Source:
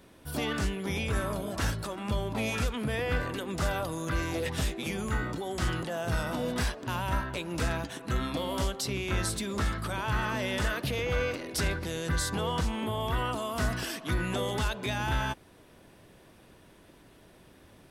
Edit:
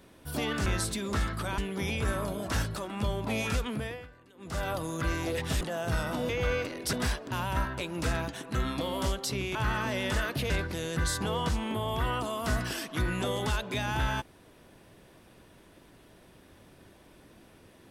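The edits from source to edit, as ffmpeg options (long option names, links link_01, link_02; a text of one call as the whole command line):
ffmpeg -i in.wav -filter_complex "[0:a]asplit=10[link_01][link_02][link_03][link_04][link_05][link_06][link_07][link_08][link_09][link_10];[link_01]atrim=end=0.662[link_11];[link_02]atrim=start=9.108:end=10.032[link_12];[link_03]atrim=start=0.658:end=3.15,asetpts=PTS-STARTPTS,afade=type=out:start_time=2.102:duration=0.39:silence=0.0668344[link_13];[link_04]atrim=start=3.15:end=3.42,asetpts=PTS-STARTPTS,volume=-23.5dB[link_14];[link_05]atrim=start=3.42:end=4.692,asetpts=PTS-STARTPTS,afade=type=in:duration=0.39:silence=0.0668344[link_15];[link_06]atrim=start=5.808:end=6.492[link_16];[link_07]atrim=start=10.978:end=11.622[link_17];[link_08]atrim=start=6.488:end=9.112[link_18];[link_09]atrim=start=10.028:end=10.982[link_19];[link_10]atrim=start=11.618[link_20];[link_11][link_12]acrossfade=duration=0.004:curve1=hsin:curve2=hsin[link_21];[link_13][link_14][link_15]concat=n=3:v=0:a=1[link_22];[link_21][link_22]acrossfade=duration=0.004:curve1=hsin:curve2=hsin[link_23];[link_23][link_16]acrossfade=duration=0.004:curve1=hsin:curve2=hsin[link_24];[link_24][link_17]acrossfade=duration=0.004:curve1=hsin:curve2=hsin[link_25];[link_25][link_18]acrossfade=duration=0.004:curve1=hsin:curve2=hsin[link_26];[link_26][link_19]acrossfade=duration=0.004:curve1=hsin:curve2=hsin[link_27];[link_27][link_20]acrossfade=duration=0.004:curve1=hsin:curve2=hsin" out.wav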